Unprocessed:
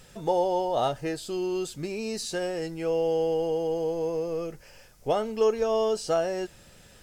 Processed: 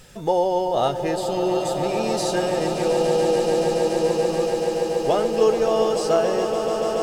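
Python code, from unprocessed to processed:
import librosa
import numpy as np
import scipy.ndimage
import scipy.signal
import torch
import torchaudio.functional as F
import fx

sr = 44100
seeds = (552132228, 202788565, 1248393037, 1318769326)

y = fx.echo_swell(x, sr, ms=143, loudest=8, wet_db=-10.5)
y = F.gain(torch.from_numpy(y), 4.5).numpy()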